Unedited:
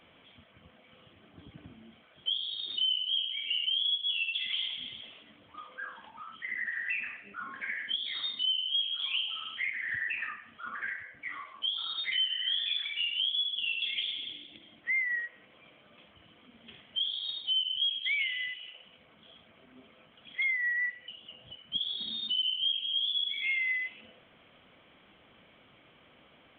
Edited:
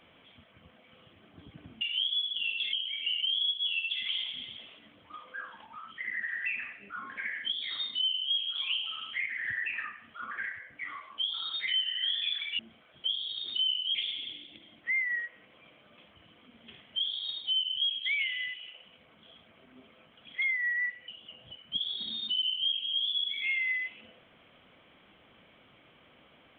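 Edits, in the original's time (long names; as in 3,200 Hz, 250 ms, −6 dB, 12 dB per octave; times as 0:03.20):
0:01.81–0:03.17: swap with 0:13.03–0:13.95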